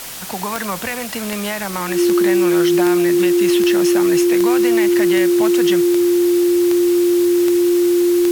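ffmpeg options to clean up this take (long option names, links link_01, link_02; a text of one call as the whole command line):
ffmpeg -i in.wav -af "adeclick=threshold=4,bandreject=frequency=350:width=30,afwtdn=0.032" out.wav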